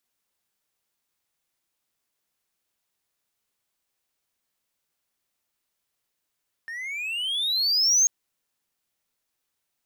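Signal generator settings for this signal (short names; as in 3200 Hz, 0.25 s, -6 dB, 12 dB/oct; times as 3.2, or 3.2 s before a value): gliding synth tone triangle, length 1.39 s, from 1790 Hz, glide +22.5 st, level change +17.5 dB, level -13 dB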